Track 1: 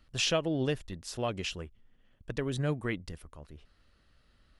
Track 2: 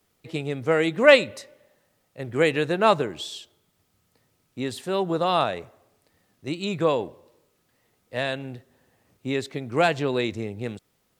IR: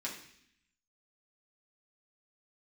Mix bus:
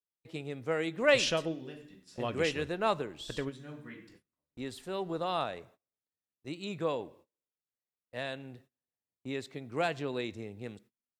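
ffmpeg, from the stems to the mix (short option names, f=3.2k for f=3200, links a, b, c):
-filter_complex "[0:a]lowshelf=f=120:g=-3,adelay=1000,volume=-3dB,asplit=2[a][b];[b]volume=-12.5dB[c];[1:a]volume=-11dB,asplit=3[d][e][f];[e]volume=-19dB[g];[f]apad=whole_len=246917[h];[a][h]sidechaingate=range=-26dB:threshold=-59dB:ratio=16:detection=peak[i];[2:a]atrim=start_sample=2205[j];[c][g]amix=inputs=2:normalize=0[k];[k][j]afir=irnorm=-1:irlink=0[l];[i][d][l]amix=inputs=3:normalize=0,agate=range=-27dB:threshold=-58dB:ratio=16:detection=peak"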